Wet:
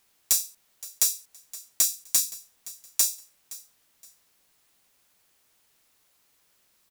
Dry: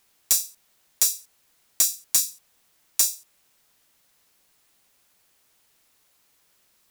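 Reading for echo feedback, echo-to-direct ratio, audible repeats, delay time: 28%, -18.0 dB, 2, 0.519 s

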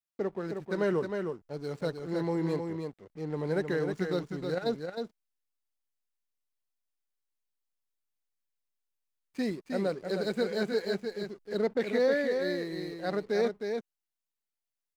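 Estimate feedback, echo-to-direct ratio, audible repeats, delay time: no steady repeat, -5.5 dB, 1, 0.312 s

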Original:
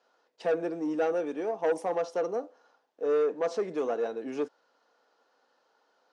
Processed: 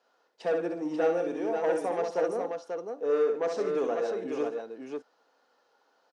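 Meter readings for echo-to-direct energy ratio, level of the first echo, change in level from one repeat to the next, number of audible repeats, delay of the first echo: -2.0 dB, -5.5 dB, no steady repeat, 3, 64 ms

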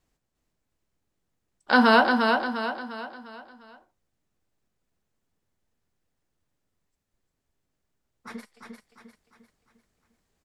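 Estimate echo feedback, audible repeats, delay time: 44%, 5, 0.351 s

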